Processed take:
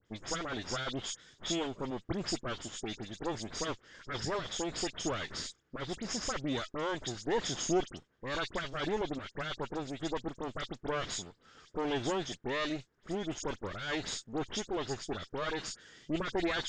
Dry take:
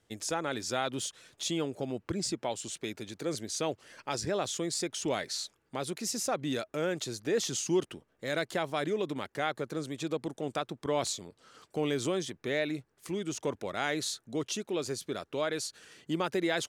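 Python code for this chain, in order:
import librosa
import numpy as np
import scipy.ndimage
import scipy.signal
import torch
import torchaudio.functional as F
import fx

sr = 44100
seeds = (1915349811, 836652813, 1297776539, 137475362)

y = fx.lower_of_two(x, sr, delay_ms=0.6)
y = scipy.signal.sosfilt(scipy.signal.butter(8, 7300.0, 'lowpass', fs=sr, output='sos'), y)
y = fx.dispersion(y, sr, late='highs', ms=62.0, hz=2700.0)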